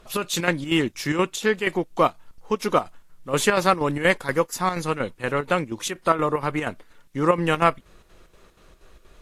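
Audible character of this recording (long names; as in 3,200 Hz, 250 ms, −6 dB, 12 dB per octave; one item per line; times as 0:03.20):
chopped level 4.2 Hz, depth 60%, duty 70%
a quantiser's noise floor 12 bits, dither triangular
AAC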